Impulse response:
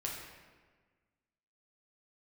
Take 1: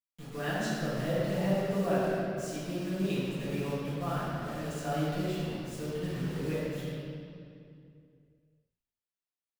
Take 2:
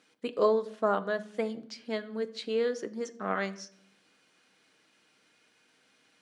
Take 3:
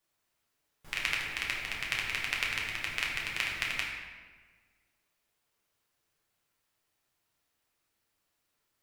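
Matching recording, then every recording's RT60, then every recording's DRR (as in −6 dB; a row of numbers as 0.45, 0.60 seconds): 3; 2.4, 0.70, 1.5 seconds; −13.0, 8.5, −3.5 decibels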